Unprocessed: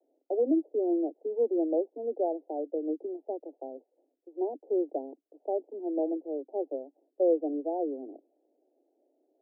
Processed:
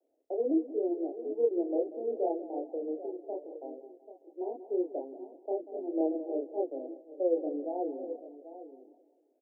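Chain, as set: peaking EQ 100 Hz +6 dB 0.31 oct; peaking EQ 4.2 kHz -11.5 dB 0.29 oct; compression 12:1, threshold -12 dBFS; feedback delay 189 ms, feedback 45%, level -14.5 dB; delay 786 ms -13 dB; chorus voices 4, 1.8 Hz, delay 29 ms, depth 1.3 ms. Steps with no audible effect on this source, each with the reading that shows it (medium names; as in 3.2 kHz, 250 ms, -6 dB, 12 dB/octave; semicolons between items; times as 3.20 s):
peaking EQ 100 Hz: input has nothing below 230 Hz; peaking EQ 4.2 kHz: input has nothing above 850 Hz; compression, threshold -12 dBFS: peak at its input -16.0 dBFS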